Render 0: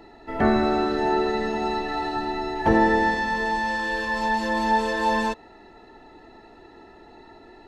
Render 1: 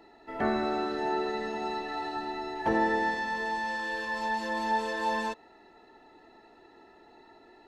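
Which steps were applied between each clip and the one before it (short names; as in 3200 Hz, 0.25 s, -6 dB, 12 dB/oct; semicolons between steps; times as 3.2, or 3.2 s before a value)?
low shelf 150 Hz -11.5 dB; gain -6.5 dB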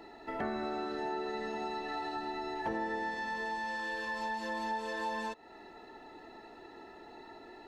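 compressor 3:1, threshold -42 dBFS, peak gain reduction 14.5 dB; gain +4.5 dB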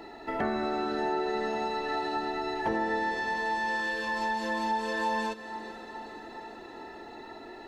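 diffused feedback echo 0.456 s, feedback 62%, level -14 dB; gain +6 dB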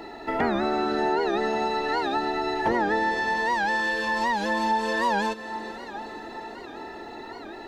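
record warp 78 rpm, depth 160 cents; gain +5.5 dB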